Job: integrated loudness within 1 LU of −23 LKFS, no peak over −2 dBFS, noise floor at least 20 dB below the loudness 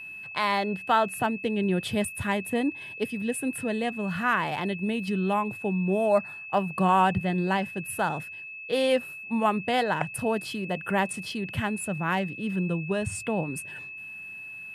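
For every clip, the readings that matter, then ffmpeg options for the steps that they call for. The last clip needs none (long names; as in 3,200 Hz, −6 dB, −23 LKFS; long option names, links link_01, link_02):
interfering tone 2,600 Hz; level of the tone −38 dBFS; integrated loudness −27.5 LKFS; sample peak −11.0 dBFS; target loudness −23.0 LKFS
→ -af "bandreject=frequency=2600:width=30"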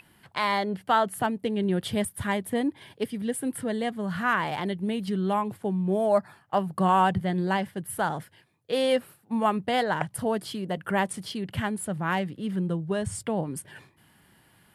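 interfering tone none found; integrated loudness −28.0 LKFS; sample peak −10.5 dBFS; target loudness −23.0 LKFS
→ -af "volume=5dB"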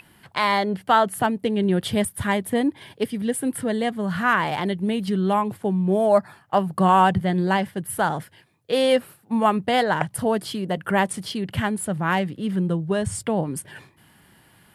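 integrated loudness −23.0 LKFS; sample peak −5.5 dBFS; background noise floor −57 dBFS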